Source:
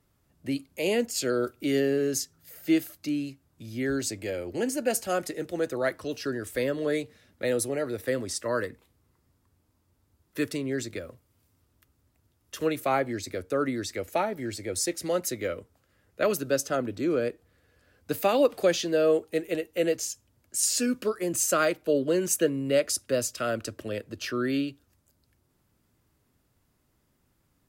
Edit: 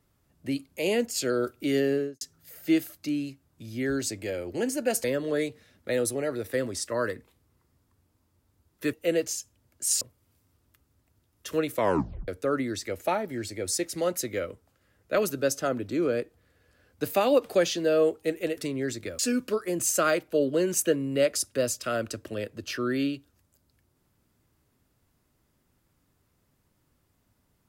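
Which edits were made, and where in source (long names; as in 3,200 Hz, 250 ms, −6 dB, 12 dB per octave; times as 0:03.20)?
0:01.92–0:02.21: fade out and dull
0:05.04–0:06.58: remove
0:10.47–0:11.09: swap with 0:19.65–0:20.73
0:12.82: tape stop 0.54 s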